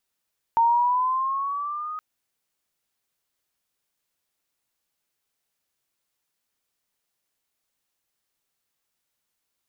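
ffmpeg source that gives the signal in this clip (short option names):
-f lavfi -i "aevalsrc='pow(10,(-15-15*t/1.42)/20)*sin(2*PI*914*1.42/(5.5*log(2)/12)*(exp(5.5*log(2)/12*t/1.42)-1))':d=1.42:s=44100"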